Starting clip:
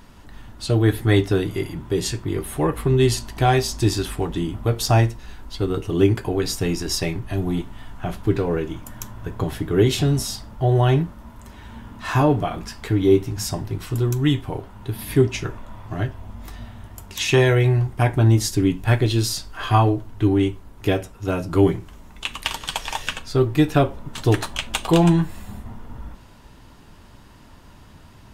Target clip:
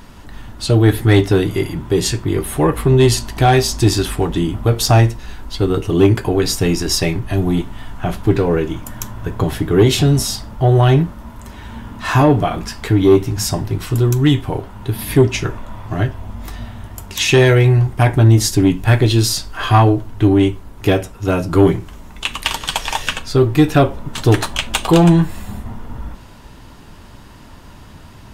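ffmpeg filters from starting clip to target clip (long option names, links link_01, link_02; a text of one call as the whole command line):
ffmpeg -i in.wav -af "acontrast=87" out.wav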